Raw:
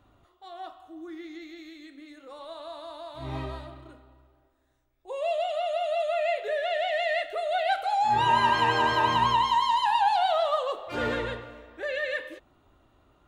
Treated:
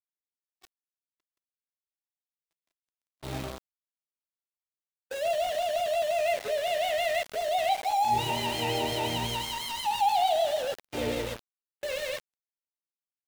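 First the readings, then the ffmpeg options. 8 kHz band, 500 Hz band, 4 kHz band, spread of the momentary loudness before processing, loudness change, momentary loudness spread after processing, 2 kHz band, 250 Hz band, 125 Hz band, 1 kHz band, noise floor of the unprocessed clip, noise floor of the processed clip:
can't be measured, −0.5 dB, 0.0 dB, 20 LU, −3.0 dB, 12 LU, −6.0 dB, −1.5 dB, −1.0 dB, −4.5 dB, −66 dBFS, below −85 dBFS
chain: -af "asuperstop=centerf=1300:order=12:qfactor=1.2,aeval=exprs='val(0)*gte(abs(val(0)),0.0224)':channel_layout=same,agate=range=-34dB:threshold=-44dB:ratio=16:detection=peak"

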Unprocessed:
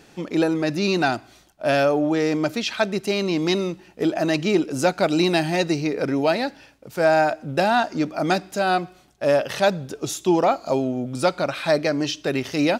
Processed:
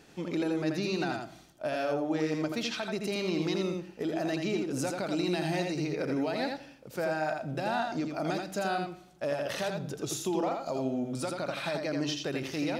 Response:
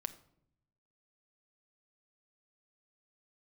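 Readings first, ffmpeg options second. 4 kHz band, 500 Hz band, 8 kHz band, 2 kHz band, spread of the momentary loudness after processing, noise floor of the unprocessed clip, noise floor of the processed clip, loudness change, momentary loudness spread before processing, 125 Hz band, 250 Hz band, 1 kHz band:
−9.5 dB, −11.0 dB, −7.0 dB, −11.0 dB, 5 LU, −53 dBFS, −54 dBFS, −10.0 dB, 6 LU, −8.0 dB, −9.0 dB, −11.5 dB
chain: -filter_complex "[0:a]acompressor=threshold=-19dB:ratio=6,alimiter=limit=-17dB:level=0:latency=1:release=117,asplit=2[link_01][link_02];[1:a]atrim=start_sample=2205,adelay=83[link_03];[link_02][link_03]afir=irnorm=-1:irlink=0,volume=-2.5dB[link_04];[link_01][link_04]amix=inputs=2:normalize=0,volume=-6.5dB"

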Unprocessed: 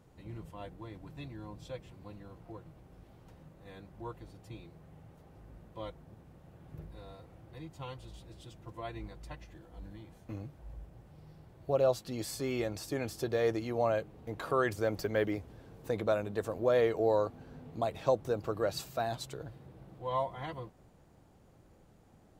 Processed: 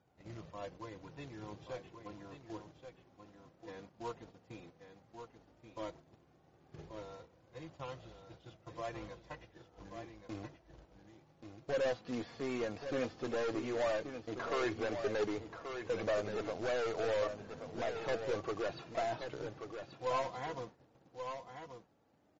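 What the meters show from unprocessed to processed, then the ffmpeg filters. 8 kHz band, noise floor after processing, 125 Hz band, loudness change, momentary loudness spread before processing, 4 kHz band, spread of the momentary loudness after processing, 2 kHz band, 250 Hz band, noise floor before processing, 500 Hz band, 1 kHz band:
−6.5 dB, −68 dBFS, −8.5 dB, −5.5 dB, 21 LU, −2.0 dB, 20 LU, −1.0 dB, −3.5 dB, −61 dBFS, −4.5 dB, −3.5 dB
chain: -filter_complex "[0:a]highpass=89,agate=range=-9dB:threshold=-52dB:ratio=16:detection=peak,acrossover=split=3700[link_01][link_02];[link_02]acompressor=threshold=-57dB:ratio=4:attack=1:release=60[link_03];[link_01][link_03]amix=inputs=2:normalize=0,bass=frequency=250:gain=-5,treble=frequency=4000:gain=-15,aeval=exprs='(tanh(44.7*val(0)+0.1)-tanh(0.1))/44.7':channel_layout=same,flanger=delay=1.3:depth=3.1:regen=55:speed=0.12:shape=triangular,acrusher=bits=3:mode=log:mix=0:aa=0.000001,asplit=2[link_04][link_05];[link_05]aecho=0:1:1132:0.398[link_06];[link_04][link_06]amix=inputs=2:normalize=0,aresample=16000,aresample=44100,volume=6dB" -ar 44100 -c:a libmp3lame -b:a 32k

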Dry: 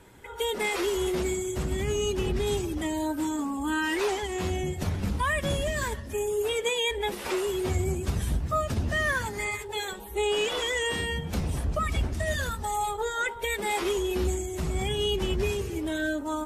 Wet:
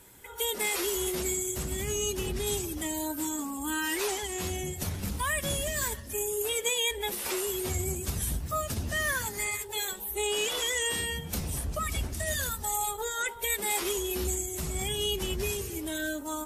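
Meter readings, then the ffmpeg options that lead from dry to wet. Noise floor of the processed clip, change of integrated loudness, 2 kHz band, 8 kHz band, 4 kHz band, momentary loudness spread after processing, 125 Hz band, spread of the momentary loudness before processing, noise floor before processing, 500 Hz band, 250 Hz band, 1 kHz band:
−41 dBFS, −1.5 dB, −2.5 dB, +7.0 dB, 0.0 dB, 5 LU, −5.5 dB, 5 LU, −39 dBFS, −5.0 dB, −5.5 dB, −4.5 dB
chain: -af "aemphasis=mode=production:type=75fm,volume=-4.5dB"

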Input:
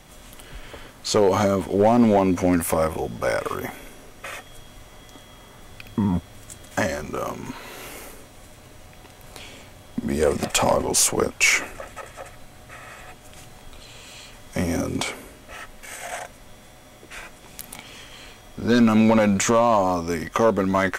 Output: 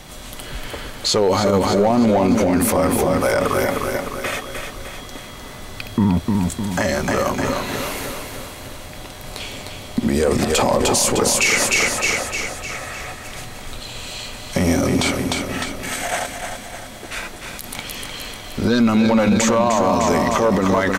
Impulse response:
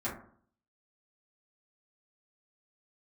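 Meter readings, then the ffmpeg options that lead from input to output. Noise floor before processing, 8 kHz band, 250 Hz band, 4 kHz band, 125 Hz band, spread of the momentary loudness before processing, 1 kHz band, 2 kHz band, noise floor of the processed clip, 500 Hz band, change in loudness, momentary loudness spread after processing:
−47 dBFS, +4.5 dB, +4.0 dB, +7.5 dB, +5.5 dB, 23 LU, +4.0 dB, +5.5 dB, −35 dBFS, +3.5 dB, +2.5 dB, 17 LU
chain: -filter_complex "[0:a]equalizer=frequency=4200:width_type=o:width=0.49:gain=4.5,asplit=2[link_01][link_02];[link_02]aecho=0:1:304|608|912|1216|1520|1824|2128:0.473|0.251|0.133|0.0704|0.0373|0.0198|0.0105[link_03];[link_01][link_03]amix=inputs=2:normalize=0,alimiter=level_in=16dB:limit=-1dB:release=50:level=0:latency=1,volume=-7dB"

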